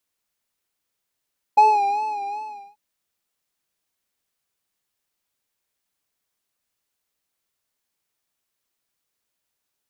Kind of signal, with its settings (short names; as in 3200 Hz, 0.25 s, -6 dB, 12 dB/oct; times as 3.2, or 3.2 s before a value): synth patch with vibrato G#5, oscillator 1 square, interval +19 st, sub -30 dB, noise -26.5 dB, filter bandpass, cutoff 190 Hz, Q 6.2, filter envelope 1.5 oct, filter decay 0.23 s, filter sustain 45%, attack 13 ms, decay 0.61 s, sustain -11 dB, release 0.41 s, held 0.78 s, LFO 2.6 Hz, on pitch 70 cents